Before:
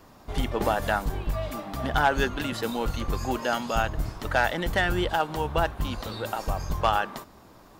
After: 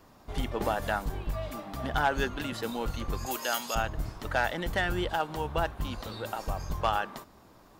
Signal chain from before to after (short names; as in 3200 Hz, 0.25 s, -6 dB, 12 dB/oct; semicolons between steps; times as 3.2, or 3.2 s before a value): 3.26–3.75 RIAA curve recording; gain -4.5 dB